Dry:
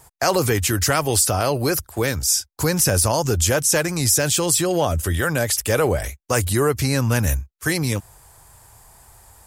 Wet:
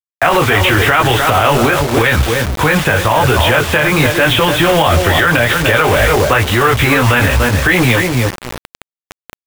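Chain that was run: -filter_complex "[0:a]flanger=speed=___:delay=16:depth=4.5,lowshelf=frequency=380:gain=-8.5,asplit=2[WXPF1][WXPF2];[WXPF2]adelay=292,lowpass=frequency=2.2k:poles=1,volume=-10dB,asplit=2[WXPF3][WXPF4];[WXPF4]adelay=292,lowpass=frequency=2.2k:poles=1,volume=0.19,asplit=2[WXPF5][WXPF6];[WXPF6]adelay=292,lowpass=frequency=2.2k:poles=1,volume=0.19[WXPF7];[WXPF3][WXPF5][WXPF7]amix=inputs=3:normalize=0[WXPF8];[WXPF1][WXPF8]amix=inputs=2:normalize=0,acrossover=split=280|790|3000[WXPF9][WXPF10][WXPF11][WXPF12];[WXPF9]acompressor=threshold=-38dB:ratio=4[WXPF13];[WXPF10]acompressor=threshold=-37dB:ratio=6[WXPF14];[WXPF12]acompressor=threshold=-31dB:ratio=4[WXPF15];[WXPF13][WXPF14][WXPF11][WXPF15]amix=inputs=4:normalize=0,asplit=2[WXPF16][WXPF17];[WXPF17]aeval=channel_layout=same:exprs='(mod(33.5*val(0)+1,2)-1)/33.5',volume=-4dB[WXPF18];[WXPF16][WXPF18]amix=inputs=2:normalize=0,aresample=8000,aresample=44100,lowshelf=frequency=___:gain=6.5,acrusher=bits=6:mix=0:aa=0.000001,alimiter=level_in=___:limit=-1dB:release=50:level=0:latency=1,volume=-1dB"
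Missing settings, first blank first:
0.9, 80, 23dB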